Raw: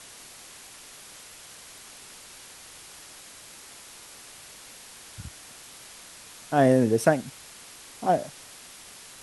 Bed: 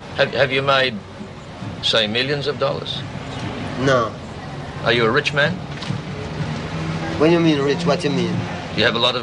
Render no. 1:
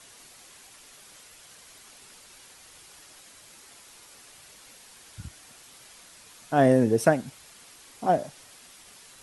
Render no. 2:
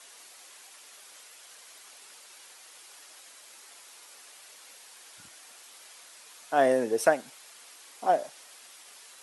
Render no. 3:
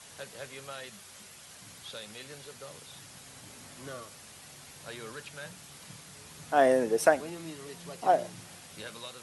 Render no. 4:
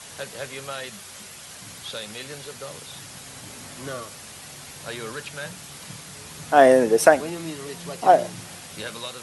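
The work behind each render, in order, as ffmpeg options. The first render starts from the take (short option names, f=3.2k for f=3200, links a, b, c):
-af "afftdn=nr=6:nf=-47"
-af "highpass=470"
-filter_complex "[1:a]volume=-27dB[a];[0:a][a]amix=inputs=2:normalize=0"
-af "volume=9dB,alimiter=limit=-1dB:level=0:latency=1"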